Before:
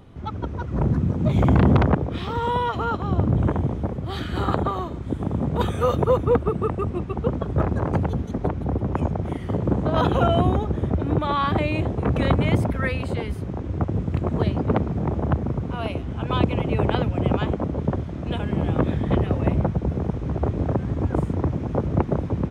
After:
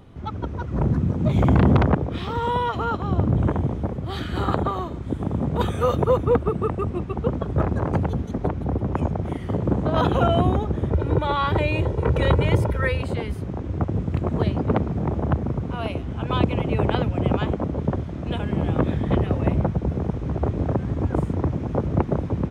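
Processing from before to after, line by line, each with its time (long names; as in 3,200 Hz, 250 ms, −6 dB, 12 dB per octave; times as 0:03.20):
0:10.91–0:13.02: comb filter 2.1 ms, depth 59%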